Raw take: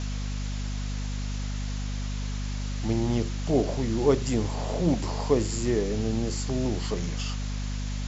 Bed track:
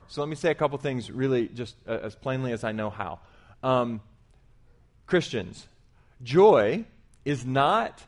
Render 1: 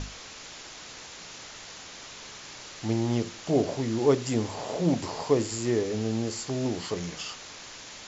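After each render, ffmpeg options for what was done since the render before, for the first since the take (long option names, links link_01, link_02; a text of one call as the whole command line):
ffmpeg -i in.wav -af "bandreject=frequency=50:width_type=h:width=6,bandreject=frequency=100:width_type=h:width=6,bandreject=frequency=150:width_type=h:width=6,bandreject=frequency=200:width_type=h:width=6,bandreject=frequency=250:width_type=h:width=6" out.wav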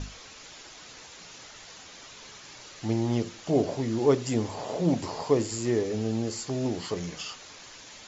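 ffmpeg -i in.wav -af "afftdn=noise_reduction=6:noise_floor=-45" out.wav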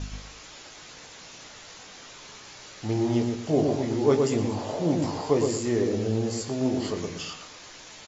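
ffmpeg -i in.wav -filter_complex "[0:a]asplit=2[link_01][link_02];[link_02]adelay=20,volume=-7dB[link_03];[link_01][link_03]amix=inputs=2:normalize=0,asplit=2[link_04][link_05];[link_05]adelay=117,lowpass=frequency=1500:poles=1,volume=-3dB,asplit=2[link_06][link_07];[link_07]adelay=117,lowpass=frequency=1500:poles=1,volume=0.33,asplit=2[link_08][link_09];[link_09]adelay=117,lowpass=frequency=1500:poles=1,volume=0.33,asplit=2[link_10][link_11];[link_11]adelay=117,lowpass=frequency=1500:poles=1,volume=0.33[link_12];[link_04][link_06][link_08][link_10][link_12]amix=inputs=5:normalize=0" out.wav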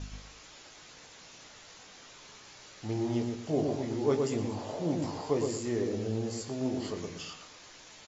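ffmpeg -i in.wav -af "volume=-6.5dB" out.wav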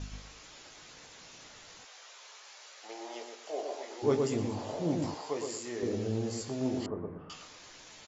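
ffmpeg -i in.wav -filter_complex "[0:a]asplit=3[link_01][link_02][link_03];[link_01]afade=type=out:start_time=1.84:duration=0.02[link_04];[link_02]highpass=frequency=520:width=0.5412,highpass=frequency=520:width=1.3066,afade=type=in:start_time=1.84:duration=0.02,afade=type=out:start_time=4.02:duration=0.02[link_05];[link_03]afade=type=in:start_time=4.02:duration=0.02[link_06];[link_04][link_05][link_06]amix=inputs=3:normalize=0,asettb=1/sr,asplit=3[link_07][link_08][link_09];[link_07]atrim=end=5.144[link_10];[link_08]atrim=start=5.14:end=5.83,asetpts=PTS-STARTPTS,afade=type=in:duration=0.004:curve=qsin,afade=type=out:start_time=0.686:duration=0.004:curve=qsin,highpass=frequency=740:poles=1[link_11];[link_09]atrim=start=5.826[link_12];[link_10][link_11]acrossfade=duration=0.004:curve1=hsin:curve2=qsin[link_13];[link_13][link_12]acrossfade=duration=0.004:curve1=qsin:curve2=hsin,asettb=1/sr,asplit=3[link_14][link_15][link_16];[link_14]atrim=end=6.864[link_17];[link_15]atrim=start=6.86:end=7.3,asetpts=PTS-STARTPTS,afade=type=in:duration=0.004:curve=qsin,afade=type=out:start_time=0.436:duration=0.004:curve=qsin,lowpass=frequency=1300:width=0.5412,lowpass=frequency=1300:width=1.3066[link_18];[link_16]atrim=start=7.296[link_19];[link_17][link_18]acrossfade=duration=0.004:curve1=hsin:curve2=qsin[link_20];[link_20][link_19]acrossfade=duration=0.004:curve1=qsin:curve2=hsin" out.wav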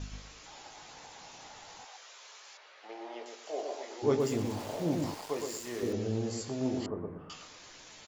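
ffmpeg -i in.wav -filter_complex "[0:a]asettb=1/sr,asplit=3[link_01][link_02][link_03];[link_01]atrim=end=0.464[link_04];[link_02]atrim=start=0.46:end=1.97,asetpts=PTS-STARTPTS,afade=type=in:duration=0.004:curve=qsin,afade=type=out:start_time=1.506:duration=0.004:curve=qsin,equalizer=frequency=820:width_type=o:width=0.48:gain=12.5[link_05];[link_03]atrim=start=1.966[link_06];[link_04][link_05]acrossfade=duration=0.004:curve1=hsin:curve2=qsin[link_07];[link_07][link_06]acrossfade=duration=0.004:curve1=qsin:curve2=hsin,asettb=1/sr,asplit=3[link_08][link_09][link_10];[link_08]atrim=end=2.574[link_11];[link_09]atrim=start=2.57:end=3.26,asetpts=PTS-STARTPTS,afade=type=in:duration=0.004:curve=qsin,afade=type=out:start_time=0.686:duration=0.004:curve=qsin,lowpass=2900[link_12];[link_10]atrim=start=3.256[link_13];[link_11][link_12]acrossfade=duration=0.004:curve1=hsin:curve2=qsin[link_14];[link_14][link_13]acrossfade=duration=0.004:curve1=qsin:curve2=hsin,asettb=1/sr,asplit=3[link_15][link_16][link_17];[link_15]atrim=end=4.204[link_18];[link_16]atrim=start=4.2:end=5.93,asetpts=PTS-STARTPTS,afade=type=in:duration=0.004:curve=qsin,afade=type=out:start_time=1.726:duration=0.004:curve=qsin,aeval=exprs='val(0)*gte(abs(val(0)),0.00794)':channel_layout=same[link_19];[link_17]atrim=start=5.926[link_20];[link_18][link_19]acrossfade=duration=0.004:curve1=hsin:curve2=qsin[link_21];[link_21][link_20]acrossfade=duration=0.004:curve1=qsin:curve2=hsin" out.wav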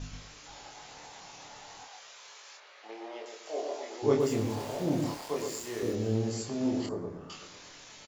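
ffmpeg -i in.wav -filter_complex "[0:a]asplit=2[link_01][link_02];[link_02]adelay=27,volume=-4dB[link_03];[link_01][link_03]amix=inputs=2:normalize=0,aecho=1:1:490:0.0891" out.wav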